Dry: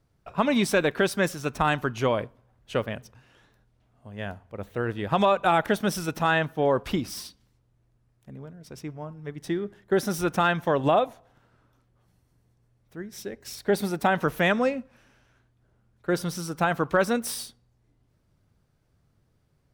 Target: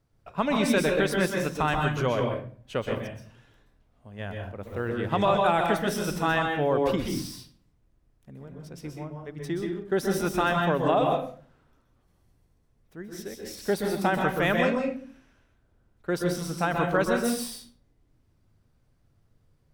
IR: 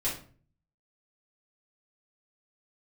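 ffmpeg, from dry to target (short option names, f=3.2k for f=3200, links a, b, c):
-filter_complex "[0:a]asplit=2[a][b];[1:a]atrim=start_sample=2205,adelay=123[c];[b][c]afir=irnorm=-1:irlink=0,volume=-7.5dB[d];[a][d]amix=inputs=2:normalize=0,volume=-3dB"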